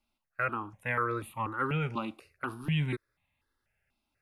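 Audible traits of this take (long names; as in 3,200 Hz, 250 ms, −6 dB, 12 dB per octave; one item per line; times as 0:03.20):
notches that jump at a steady rate 4.1 Hz 470–1,500 Hz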